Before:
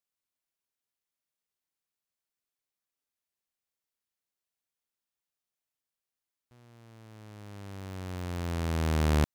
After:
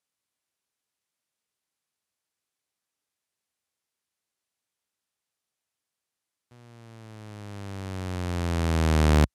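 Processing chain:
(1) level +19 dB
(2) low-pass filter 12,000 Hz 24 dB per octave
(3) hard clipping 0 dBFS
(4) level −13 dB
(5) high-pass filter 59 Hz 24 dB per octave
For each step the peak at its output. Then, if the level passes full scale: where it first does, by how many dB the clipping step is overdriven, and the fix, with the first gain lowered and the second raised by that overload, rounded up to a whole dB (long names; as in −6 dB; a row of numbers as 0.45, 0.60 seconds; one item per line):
+1.0, +3.0, 0.0, −13.0, −6.0 dBFS
step 1, 3.0 dB
step 1 +16 dB, step 4 −10 dB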